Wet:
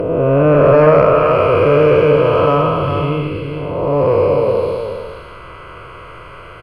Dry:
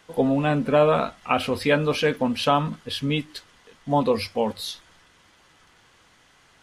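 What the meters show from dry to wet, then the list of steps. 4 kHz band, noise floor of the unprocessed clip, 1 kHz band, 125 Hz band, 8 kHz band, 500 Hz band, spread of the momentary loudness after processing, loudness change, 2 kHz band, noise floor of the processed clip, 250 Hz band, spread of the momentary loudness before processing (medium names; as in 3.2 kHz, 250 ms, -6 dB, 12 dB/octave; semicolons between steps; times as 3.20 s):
-2.5 dB, -58 dBFS, +8.5 dB, +12.0 dB, under -10 dB, +13.0 dB, 13 LU, +10.5 dB, +5.5 dB, -35 dBFS, +6.0 dB, 14 LU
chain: spectral blur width 420 ms; in parallel at -0.5 dB: upward compressor, threshold -29 dBFS; on the sum: static phaser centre 1.2 kHz, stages 8; sine folder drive 5 dB, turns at -9.5 dBFS; boxcar filter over 12 samples; on a send: delay 406 ms -6.5 dB; on the sum: trim +5 dB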